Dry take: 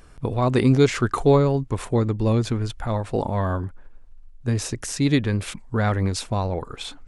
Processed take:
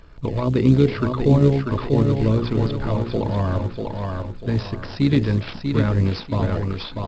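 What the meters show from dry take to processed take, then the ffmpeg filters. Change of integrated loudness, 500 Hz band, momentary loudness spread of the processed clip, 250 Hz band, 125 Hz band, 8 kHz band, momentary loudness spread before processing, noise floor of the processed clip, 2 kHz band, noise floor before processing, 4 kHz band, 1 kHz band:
+1.5 dB, 0.0 dB, 11 LU, +3.0 dB, +3.5 dB, below −15 dB, 11 LU, −36 dBFS, −2.0 dB, −45 dBFS, −1.0 dB, −2.5 dB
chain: -filter_complex "[0:a]asuperstop=centerf=760:order=20:qfactor=7.8,bandreject=frequency=60:width_type=h:width=6,bandreject=frequency=120:width_type=h:width=6,bandreject=frequency=180:width_type=h:width=6,bandreject=frequency=240:width_type=h:width=6,bandreject=frequency=300:width_type=h:width=6,bandreject=frequency=360:width_type=h:width=6,bandreject=frequency=420:width_type=h:width=6,bandreject=frequency=480:width_type=h:width=6,bandreject=frequency=540:width_type=h:width=6,tremolo=f=61:d=0.462,asplit=2[link_01][link_02];[link_02]acrusher=samples=15:mix=1:aa=0.000001:lfo=1:lforange=9:lforate=3.7,volume=-8dB[link_03];[link_01][link_03]amix=inputs=2:normalize=0,aecho=1:1:642|1284|1926|2568:0.501|0.185|0.0686|0.0254,acrossover=split=420[link_04][link_05];[link_05]acompressor=threshold=-28dB:ratio=10[link_06];[link_04][link_06]amix=inputs=2:normalize=0,aresample=11025,aresample=44100,volume=2dB" -ar 16000 -c:a pcm_mulaw

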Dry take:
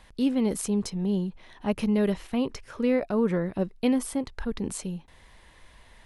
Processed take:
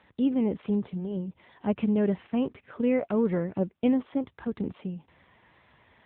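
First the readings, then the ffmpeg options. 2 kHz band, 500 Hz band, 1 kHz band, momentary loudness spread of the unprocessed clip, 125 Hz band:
−4.0 dB, −1.0 dB, −2.0 dB, 10 LU, −1.5 dB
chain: -af "aeval=exprs='0.224*(cos(1*acos(clip(val(0)/0.224,-1,1)))-cos(1*PI/2))+0.002*(cos(2*acos(clip(val(0)/0.224,-1,1)))-cos(2*PI/2))+0.00141*(cos(5*acos(clip(val(0)/0.224,-1,1)))-cos(5*PI/2))+0.00251*(cos(7*acos(clip(val(0)/0.224,-1,1)))-cos(7*PI/2))':channel_layout=same,aemphasis=mode=reproduction:type=50fm" -ar 8000 -c:a libopencore_amrnb -b:a 7950

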